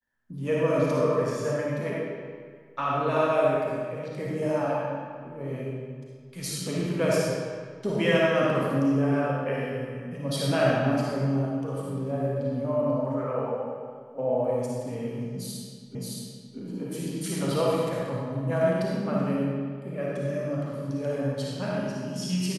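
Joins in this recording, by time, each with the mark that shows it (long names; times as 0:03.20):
0:15.95: the same again, the last 0.62 s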